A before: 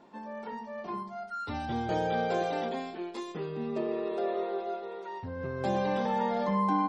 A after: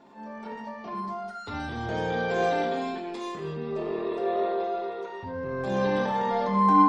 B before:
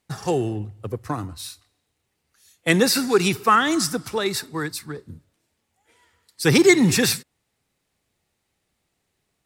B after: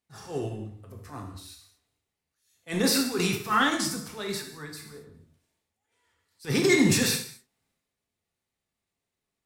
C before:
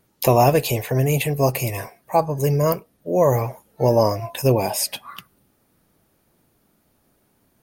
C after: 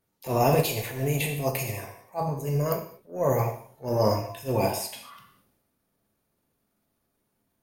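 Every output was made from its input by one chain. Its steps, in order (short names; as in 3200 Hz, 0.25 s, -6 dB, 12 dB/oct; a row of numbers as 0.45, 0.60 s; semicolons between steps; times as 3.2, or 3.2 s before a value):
transient shaper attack -11 dB, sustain +7 dB; non-linear reverb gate 0.26 s falling, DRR 1 dB; upward expander 1.5:1, over -27 dBFS; normalise peaks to -9 dBFS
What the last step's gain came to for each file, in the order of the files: +4.0, -5.5, -6.5 dB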